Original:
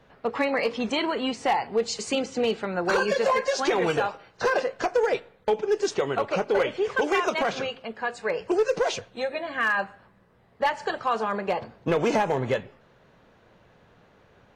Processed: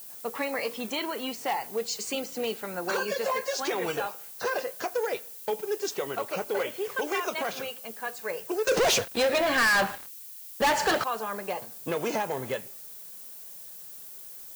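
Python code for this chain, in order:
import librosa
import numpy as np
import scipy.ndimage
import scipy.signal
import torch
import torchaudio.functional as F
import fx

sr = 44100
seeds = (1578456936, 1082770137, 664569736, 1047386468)

y = fx.highpass(x, sr, hz=170.0, slope=6)
y = fx.high_shelf(y, sr, hz=6100.0, db=11.0)
y = fx.leveller(y, sr, passes=5, at=(8.67, 11.04))
y = fx.dmg_noise_colour(y, sr, seeds[0], colour='violet', level_db=-38.0)
y = y * librosa.db_to_amplitude(-6.0)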